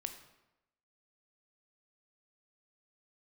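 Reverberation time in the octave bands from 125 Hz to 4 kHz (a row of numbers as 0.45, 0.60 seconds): 0.90, 0.90, 0.95, 0.95, 0.85, 0.70 seconds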